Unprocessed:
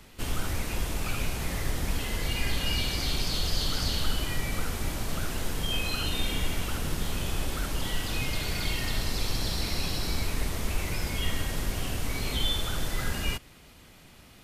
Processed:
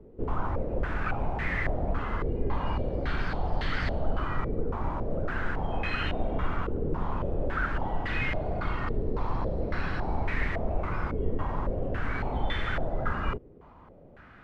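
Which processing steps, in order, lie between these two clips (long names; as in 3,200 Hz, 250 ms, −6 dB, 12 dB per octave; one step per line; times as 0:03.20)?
low-pass on a step sequencer 3.6 Hz 440–1,900 Hz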